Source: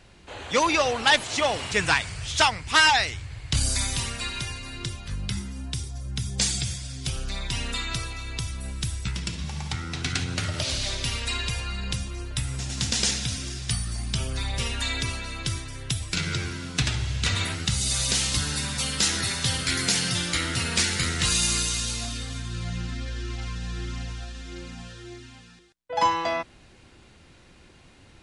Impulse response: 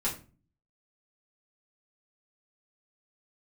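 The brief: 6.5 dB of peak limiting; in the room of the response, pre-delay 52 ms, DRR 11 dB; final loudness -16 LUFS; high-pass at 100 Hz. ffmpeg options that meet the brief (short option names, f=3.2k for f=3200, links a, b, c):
-filter_complex "[0:a]highpass=100,alimiter=limit=-12.5dB:level=0:latency=1,asplit=2[a][b];[1:a]atrim=start_sample=2205,adelay=52[c];[b][c]afir=irnorm=-1:irlink=0,volume=-17dB[d];[a][d]amix=inputs=2:normalize=0,volume=11dB"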